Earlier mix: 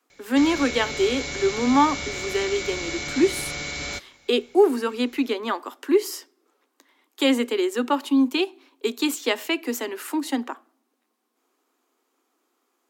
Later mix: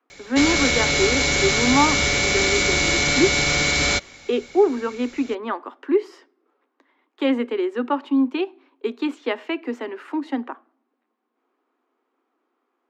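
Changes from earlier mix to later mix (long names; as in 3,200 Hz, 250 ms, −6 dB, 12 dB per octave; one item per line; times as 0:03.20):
speech: add low-pass filter 2,100 Hz 12 dB per octave
background +11.5 dB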